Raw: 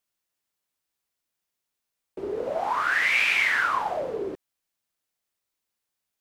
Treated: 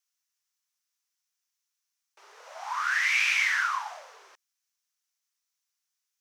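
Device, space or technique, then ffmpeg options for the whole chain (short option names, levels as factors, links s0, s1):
headphones lying on a table: -af "highpass=f=1000:w=0.5412,highpass=f=1000:w=1.3066,equalizer=f=5900:t=o:w=0.54:g=10,volume=0.708"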